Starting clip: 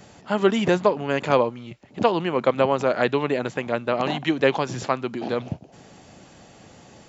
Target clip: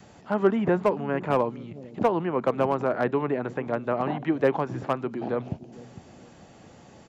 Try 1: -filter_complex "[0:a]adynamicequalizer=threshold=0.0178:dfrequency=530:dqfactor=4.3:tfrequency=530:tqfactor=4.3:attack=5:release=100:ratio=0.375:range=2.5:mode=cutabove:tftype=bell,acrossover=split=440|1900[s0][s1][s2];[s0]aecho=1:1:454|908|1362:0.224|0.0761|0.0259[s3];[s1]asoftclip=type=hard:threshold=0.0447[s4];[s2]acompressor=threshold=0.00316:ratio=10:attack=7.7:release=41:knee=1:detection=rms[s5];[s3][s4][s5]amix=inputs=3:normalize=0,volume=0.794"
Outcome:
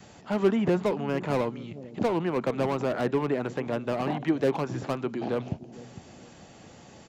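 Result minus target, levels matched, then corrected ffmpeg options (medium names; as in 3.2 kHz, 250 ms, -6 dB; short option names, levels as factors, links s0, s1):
hard clipper: distortion +13 dB; compression: peak gain reduction -8 dB
-filter_complex "[0:a]adynamicequalizer=threshold=0.0178:dfrequency=530:dqfactor=4.3:tfrequency=530:tqfactor=4.3:attack=5:release=100:ratio=0.375:range=2.5:mode=cutabove:tftype=bell,acrossover=split=440|1900[s0][s1][s2];[s0]aecho=1:1:454|908|1362:0.224|0.0761|0.0259[s3];[s1]asoftclip=type=hard:threshold=0.168[s4];[s2]acompressor=threshold=0.00112:ratio=10:attack=7.7:release=41:knee=1:detection=rms[s5];[s3][s4][s5]amix=inputs=3:normalize=0,volume=0.794"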